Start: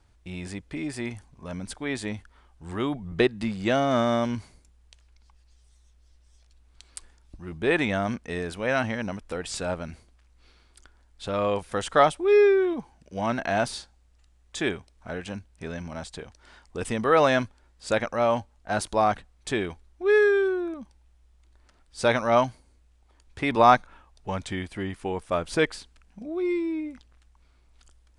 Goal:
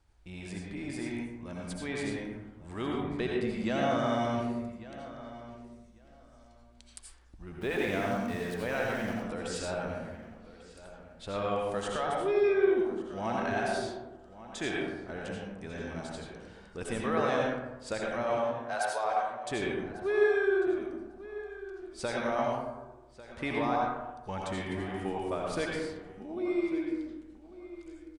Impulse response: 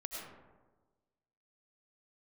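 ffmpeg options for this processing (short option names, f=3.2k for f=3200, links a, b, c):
-filter_complex "[0:a]asettb=1/sr,asplit=3[a][b][c];[a]atrim=end=18.374[d];[b]atrim=start=18.37:end=19.51,asetpts=PTS-STARTPTS,afade=t=in:d=0.004:c=qsin,afade=t=out:st=1.136:d=0.004:c=qsin,highpass=f=480:w=0.5412,highpass=f=480:w=1.3066[e];[c]atrim=start=19.506[f];[d][e]acrossfade=d=0.004:c1=hsin:c2=qsin[g];[g][f]acrossfade=d=0.004:c1=qsin:c2=hsin,alimiter=limit=-16dB:level=0:latency=1:release=233,asettb=1/sr,asplit=3[h][i][j];[h]atrim=end=7.614[k];[i]atrim=start=7.61:end=9.14,asetpts=PTS-STARTPTS,afade=t=in:d=0.004:c=qsin,afade=t=out:st=1.526:d=0.004:c=qsin,aeval=exprs='val(0)*gte(abs(val(0)),0.0126)':c=same[l];[j]atrim=start=9.136[m];[k][l]acrossfade=d=0.004:c1=hsin:c2=qsin[n];[n][m]acrossfade=d=0.004:c1=qsin:c2=hsin,asplit=2[o][p];[p]adelay=1146,lowpass=f=3.8k:p=1,volume=-15.5dB,asplit=2[q][r];[r]adelay=1146,lowpass=f=3.8k:p=1,volume=0.19[s];[o][q][s]amix=inputs=3:normalize=0[t];[1:a]atrim=start_sample=2205,asetrate=52920,aresample=44100[u];[t][u]afir=irnorm=-1:irlink=0,volume=-1.5dB"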